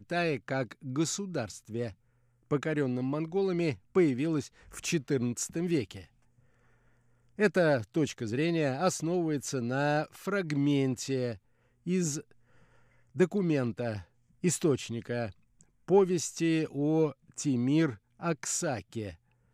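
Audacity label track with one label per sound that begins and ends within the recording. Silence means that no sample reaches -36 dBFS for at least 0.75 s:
7.390000	12.210000	sound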